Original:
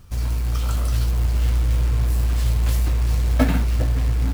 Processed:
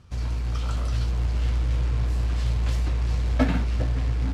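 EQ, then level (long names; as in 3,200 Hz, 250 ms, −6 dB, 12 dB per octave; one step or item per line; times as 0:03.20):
high-pass filter 50 Hz
low-pass filter 5,600 Hz 12 dB per octave
−3.0 dB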